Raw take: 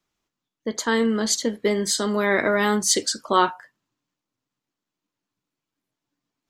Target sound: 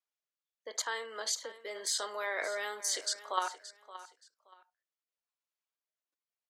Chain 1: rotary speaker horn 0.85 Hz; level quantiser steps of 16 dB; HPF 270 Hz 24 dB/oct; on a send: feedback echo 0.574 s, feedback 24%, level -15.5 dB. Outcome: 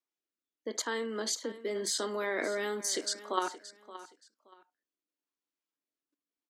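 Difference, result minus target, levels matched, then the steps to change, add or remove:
250 Hz band +16.5 dB
change: HPF 550 Hz 24 dB/oct

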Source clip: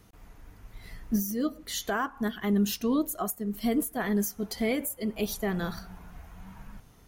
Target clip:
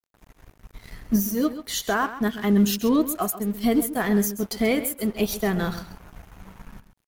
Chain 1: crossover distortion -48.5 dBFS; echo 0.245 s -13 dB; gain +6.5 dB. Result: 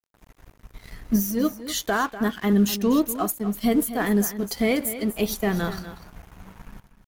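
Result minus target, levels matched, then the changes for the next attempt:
echo 0.112 s late
change: echo 0.133 s -13 dB

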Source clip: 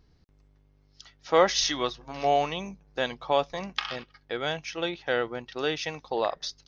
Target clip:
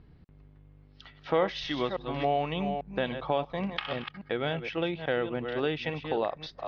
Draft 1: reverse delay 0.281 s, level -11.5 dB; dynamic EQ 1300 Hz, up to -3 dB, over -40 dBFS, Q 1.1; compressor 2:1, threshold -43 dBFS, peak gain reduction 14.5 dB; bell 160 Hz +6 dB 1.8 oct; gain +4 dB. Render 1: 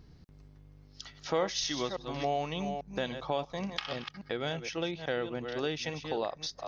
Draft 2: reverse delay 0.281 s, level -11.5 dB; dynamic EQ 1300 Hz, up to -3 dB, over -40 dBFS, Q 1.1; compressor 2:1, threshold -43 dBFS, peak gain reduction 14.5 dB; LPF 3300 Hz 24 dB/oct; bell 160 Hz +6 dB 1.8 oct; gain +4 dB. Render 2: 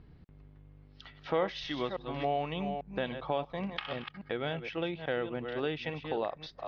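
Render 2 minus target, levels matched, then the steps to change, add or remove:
compressor: peak gain reduction +4 dB
change: compressor 2:1, threshold -35 dBFS, peak gain reduction 10.5 dB

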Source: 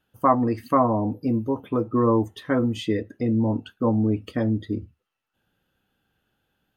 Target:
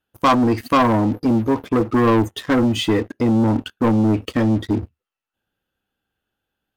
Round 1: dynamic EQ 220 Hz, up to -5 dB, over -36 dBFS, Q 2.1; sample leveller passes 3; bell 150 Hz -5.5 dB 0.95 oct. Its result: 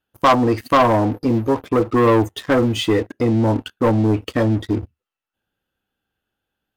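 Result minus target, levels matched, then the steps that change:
500 Hz band +3.0 dB
change: dynamic EQ 610 Hz, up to -5 dB, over -36 dBFS, Q 2.1

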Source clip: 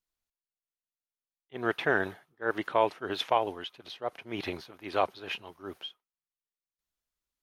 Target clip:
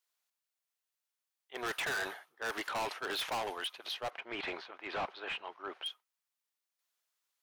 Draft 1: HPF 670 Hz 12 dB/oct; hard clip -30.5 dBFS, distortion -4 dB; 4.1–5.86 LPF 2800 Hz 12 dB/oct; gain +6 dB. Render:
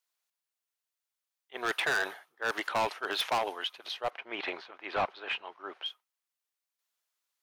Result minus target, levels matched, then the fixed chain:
hard clip: distortion -4 dB
HPF 670 Hz 12 dB/oct; hard clip -39 dBFS, distortion 0 dB; 4.1–5.86 LPF 2800 Hz 12 dB/oct; gain +6 dB

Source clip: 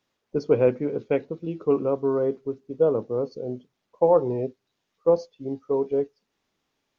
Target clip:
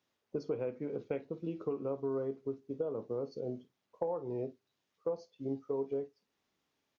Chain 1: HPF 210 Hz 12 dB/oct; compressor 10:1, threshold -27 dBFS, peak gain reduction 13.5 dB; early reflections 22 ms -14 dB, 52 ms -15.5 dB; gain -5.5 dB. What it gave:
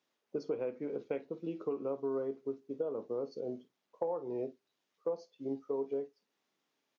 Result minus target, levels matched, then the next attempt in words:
125 Hz band -7.0 dB
HPF 54 Hz 12 dB/oct; compressor 10:1, threshold -27 dBFS, peak gain reduction 14 dB; early reflections 22 ms -14 dB, 52 ms -15.5 dB; gain -5.5 dB

